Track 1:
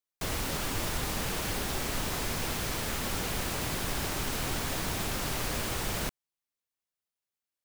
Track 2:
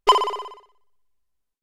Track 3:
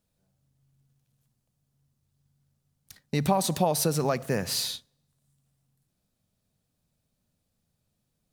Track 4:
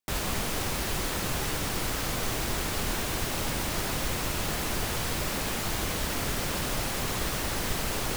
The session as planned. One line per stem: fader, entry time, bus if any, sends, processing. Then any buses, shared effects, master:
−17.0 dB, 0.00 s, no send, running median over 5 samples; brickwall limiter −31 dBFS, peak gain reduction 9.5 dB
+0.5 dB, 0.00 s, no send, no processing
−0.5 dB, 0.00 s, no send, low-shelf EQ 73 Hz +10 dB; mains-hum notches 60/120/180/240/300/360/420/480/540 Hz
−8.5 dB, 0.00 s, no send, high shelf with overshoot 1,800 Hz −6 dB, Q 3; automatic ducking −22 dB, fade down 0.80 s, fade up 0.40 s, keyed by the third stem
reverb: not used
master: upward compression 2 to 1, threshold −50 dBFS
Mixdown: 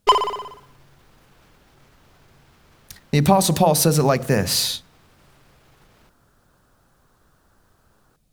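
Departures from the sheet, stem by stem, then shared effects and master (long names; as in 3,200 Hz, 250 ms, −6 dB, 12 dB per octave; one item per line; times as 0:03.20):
stem 3 −0.5 dB → +8.5 dB
master: missing upward compression 2 to 1, threshold −50 dBFS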